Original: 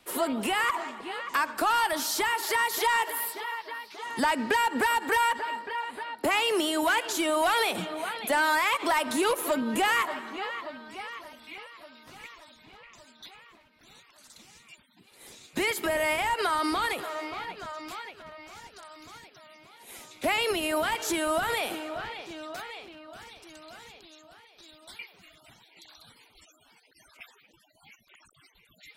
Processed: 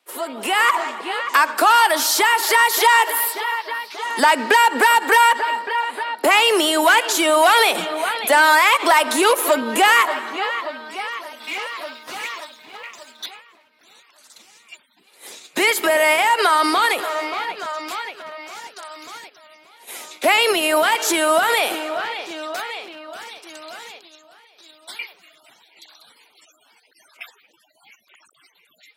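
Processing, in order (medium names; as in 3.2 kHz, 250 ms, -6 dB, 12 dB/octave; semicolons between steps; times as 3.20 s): level rider gain up to 11.5 dB; gate -39 dBFS, range -7 dB; 11.40–13.26 s: waveshaping leveller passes 2; high-pass 380 Hz 12 dB/octave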